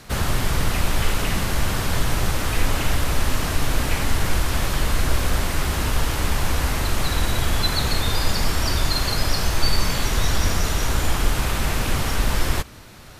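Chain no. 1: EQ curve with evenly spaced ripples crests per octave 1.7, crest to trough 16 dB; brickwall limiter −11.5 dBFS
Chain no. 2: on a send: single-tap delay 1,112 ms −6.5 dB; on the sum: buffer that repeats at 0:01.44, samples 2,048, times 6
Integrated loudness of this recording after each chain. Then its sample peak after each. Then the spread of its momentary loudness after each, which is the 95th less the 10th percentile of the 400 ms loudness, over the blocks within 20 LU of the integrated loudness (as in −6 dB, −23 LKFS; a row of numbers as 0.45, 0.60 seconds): −22.5, −22.5 LKFS; −11.5, −4.5 dBFS; 1, 2 LU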